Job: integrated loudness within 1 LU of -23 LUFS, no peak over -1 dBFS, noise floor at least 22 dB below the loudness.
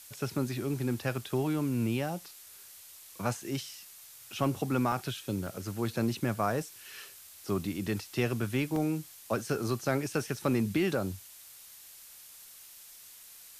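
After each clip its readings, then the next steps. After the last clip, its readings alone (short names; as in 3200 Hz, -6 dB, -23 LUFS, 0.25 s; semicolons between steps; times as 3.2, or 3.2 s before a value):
dropouts 4; longest dropout 2.5 ms; noise floor -52 dBFS; noise floor target -55 dBFS; loudness -32.5 LUFS; peak -15.5 dBFS; loudness target -23.0 LUFS
-> interpolate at 4.92/5.47/8.76/10.37, 2.5 ms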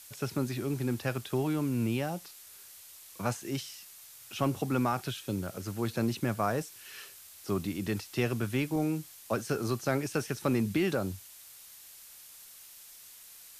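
dropouts 0; noise floor -52 dBFS; noise floor target -55 dBFS
-> noise print and reduce 6 dB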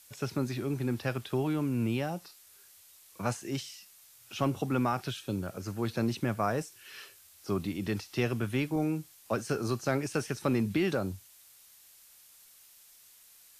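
noise floor -58 dBFS; loudness -32.5 LUFS; peak -15.5 dBFS; loudness target -23.0 LUFS
-> gain +9.5 dB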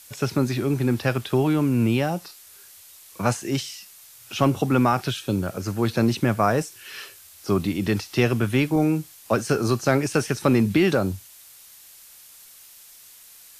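loudness -23.0 LUFS; peak -6.0 dBFS; noise floor -48 dBFS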